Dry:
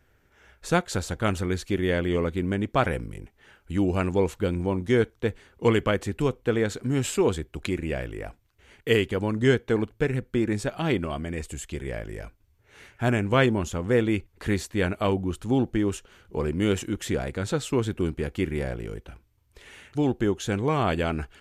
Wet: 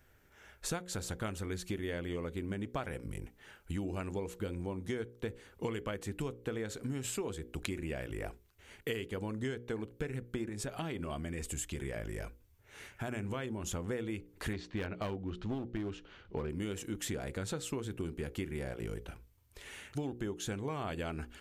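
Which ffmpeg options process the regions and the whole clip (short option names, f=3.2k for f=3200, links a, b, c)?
-filter_complex "[0:a]asettb=1/sr,asplit=3[a][b][c];[a]atrim=end=10.494[d];[b]atrim=start=10.49:end=13.72,asetpts=PTS-STARTPTS,afade=t=in:d=0.004:c=qsin,afade=t=out:st=3.226:d=0.004:c=qsin,bandreject=f=4.3k:w=28,acompressor=threshold=-30dB:ratio=2.5:attack=3.2:release=140:knee=1:detection=peak[e];[c]atrim=start=13.716[f];[d][e]acrossfade=d=0.004:c1=hsin:c2=qsin[g];[g][f]acrossfade=d=0.004:c1=qsin:c2=hsin,asettb=1/sr,asplit=3[h][i][j];[h]atrim=end=14.534[k];[i]atrim=start=14.53:end=16.5,asetpts=PTS-STARTPTS,afade=t=in:d=0.004:c=qsin,afade=t=out:st=1.966:d=0.004:c=qsin,lowpass=f=4.5k:w=0.5412,lowpass=f=4.5k:w=1.3066,aeval=exprs='clip(val(0),-1,0.0794)':c=same[l];[j]atrim=start=16.496[m];[k][l]acrossfade=d=0.004:c1=hsin:c2=qsin[n];[n][m]acrossfade=d=0.004:c1=qsin:c2=hsin,highshelf=f=7.9k:g=8,bandreject=f=60:t=h:w=6,bandreject=f=120:t=h:w=6,bandreject=f=180:t=h:w=6,bandreject=f=240:t=h:w=6,bandreject=f=300:t=h:w=6,bandreject=f=360:t=h:w=6,bandreject=f=420:t=h:w=6,bandreject=f=480:t=h:w=6,bandreject=f=540:t=h:w=6,acompressor=threshold=-32dB:ratio=10,volume=-2dB"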